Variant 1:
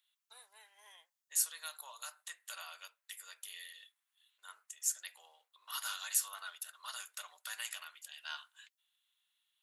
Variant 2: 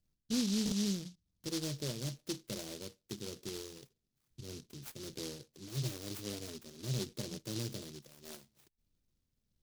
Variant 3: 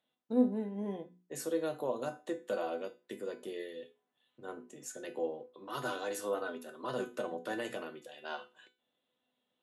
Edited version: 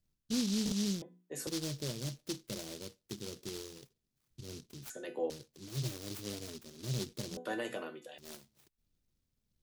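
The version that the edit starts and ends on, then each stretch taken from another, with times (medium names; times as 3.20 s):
2
1.02–1.47 s: from 3
4.90–5.30 s: from 3
7.37–8.18 s: from 3
not used: 1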